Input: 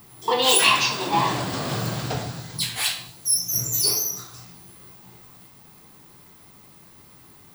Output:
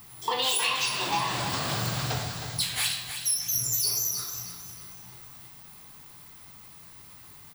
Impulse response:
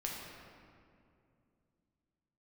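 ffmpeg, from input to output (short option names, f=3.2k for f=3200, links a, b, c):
-filter_complex "[0:a]equalizer=f=320:w=0.52:g=-9,acompressor=threshold=-26dB:ratio=5,asplit=2[a][b];[b]aecho=0:1:314|628|942|1256:0.355|0.121|0.041|0.0139[c];[a][c]amix=inputs=2:normalize=0,volume=1.5dB"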